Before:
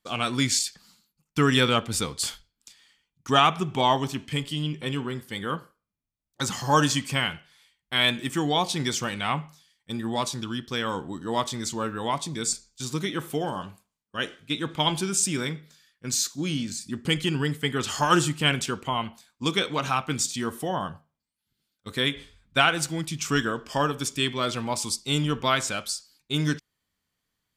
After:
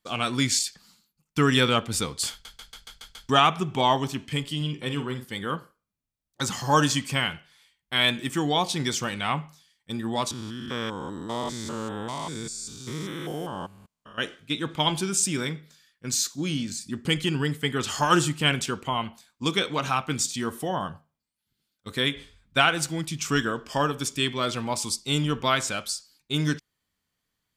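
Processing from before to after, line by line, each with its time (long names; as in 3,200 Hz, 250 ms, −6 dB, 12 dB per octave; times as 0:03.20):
0:02.31: stutter in place 0.14 s, 7 plays
0:04.56–0:05.25: double-tracking delay 48 ms −9 dB
0:10.31–0:14.18: spectrum averaged block by block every 200 ms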